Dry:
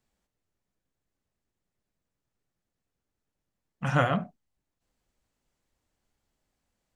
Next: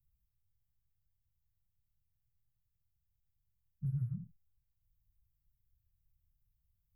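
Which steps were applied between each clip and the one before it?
inverse Chebyshev band-stop 310–7100 Hz, stop band 50 dB; compression 4:1, threshold -40 dBFS, peak gain reduction 9.5 dB; trim +6 dB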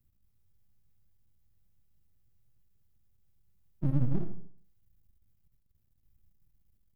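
small resonant body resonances 220/380 Hz, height 12 dB, ringing for 30 ms; half-wave rectifier; on a send at -7.5 dB: reverberation RT60 0.55 s, pre-delay 20 ms; on the sum: trim +7 dB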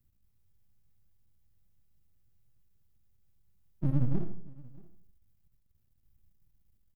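delay 630 ms -23 dB

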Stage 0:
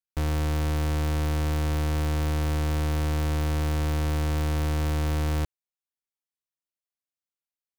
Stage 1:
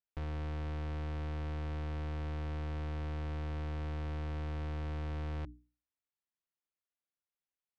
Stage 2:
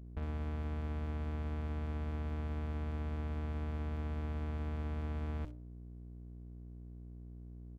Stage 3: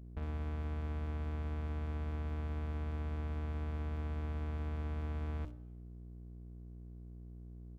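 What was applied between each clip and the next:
low-pass 3.1 kHz 12 dB/octave; hum notches 60/120/180/240/300 Hz; peak limiter -32.5 dBFS, peak gain reduction 10.5 dB; trim -2 dB
bands offset in time lows, highs 60 ms, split 2.9 kHz; hum 60 Hz, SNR 10 dB; sliding maximum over 33 samples
plate-style reverb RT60 1.3 s, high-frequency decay 0.9×, DRR 18.5 dB; trim -1 dB

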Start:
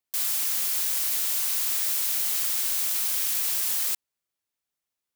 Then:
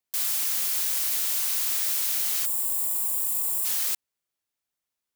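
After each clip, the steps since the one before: time-frequency box 2.46–3.65 s, 1.2–6.9 kHz -15 dB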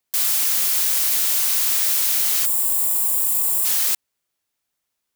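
saturation -15.5 dBFS, distortion -25 dB; trim +7.5 dB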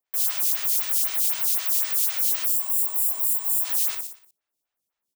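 on a send: feedback delay 60 ms, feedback 51%, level -5 dB; on the sum: lamp-driven phase shifter 3.9 Hz; trim -3.5 dB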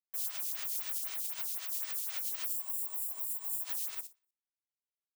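peak limiter -20.5 dBFS, peak gain reduction 10 dB; upward expansion 2.5:1, over -43 dBFS; trim -5 dB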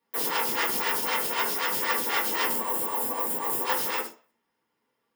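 in parallel at -3 dB: saturation -37.5 dBFS, distortion -10 dB; on the sum: reverberation RT60 0.35 s, pre-delay 3 ms, DRR -7 dB; trim +3 dB

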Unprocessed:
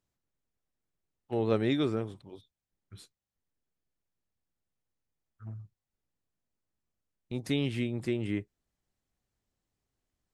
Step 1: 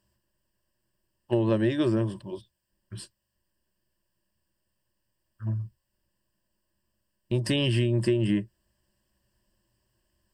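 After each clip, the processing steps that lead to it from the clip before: rippled EQ curve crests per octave 1.3, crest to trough 14 dB; compression 6:1, threshold -29 dBFS, peak gain reduction 9.5 dB; trim +8.5 dB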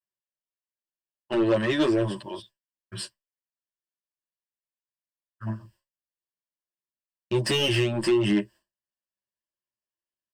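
expander -45 dBFS; overdrive pedal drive 21 dB, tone 4.9 kHz, clips at -11 dBFS; endless flanger 9.1 ms +2.1 Hz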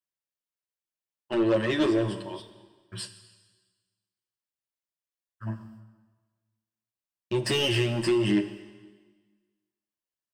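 plate-style reverb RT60 1.4 s, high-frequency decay 1×, DRR 9.5 dB; trim -2 dB

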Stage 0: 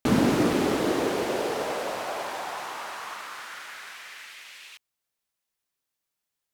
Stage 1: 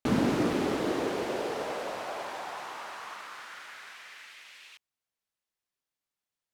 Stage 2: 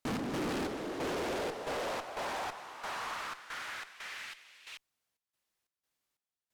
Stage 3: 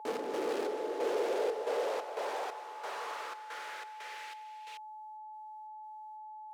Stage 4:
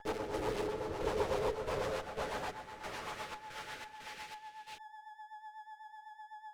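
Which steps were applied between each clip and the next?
treble shelf 8.4 kHz -7.5 dB; trim -4.5 dB
trance gate "x.xx..xxx.x" 90 bpm -12 dB; valve stage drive 39 dB, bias 0.3; trim +6 dB
whistle 860 Hz -43 dBFS; resonant high-pass 450 Hz, resonance Q 4.1; trim -4 dB
comb filter that takes the minimum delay 9.5 ms; rotary cabinet horn 8 Hz; trim +1.5 dB

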